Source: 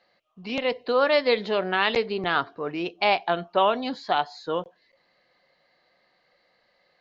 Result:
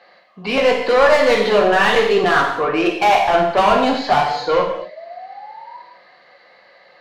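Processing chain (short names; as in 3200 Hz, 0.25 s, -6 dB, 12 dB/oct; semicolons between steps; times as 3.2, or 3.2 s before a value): overdrive pedal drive 25 dB, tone 1600 Hz, clips at -7 dBFS; painted sound rise, 4.29–5.79, 460–1000 Hz -38 dBFS; non-linear reverb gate 0.29 s falling, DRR -0.5 dB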